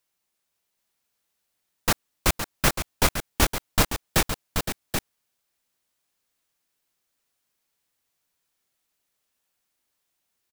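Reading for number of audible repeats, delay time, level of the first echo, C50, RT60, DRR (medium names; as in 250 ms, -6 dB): 2, 515 ms, -9.0 dB, no reverb, no reverb, no reverb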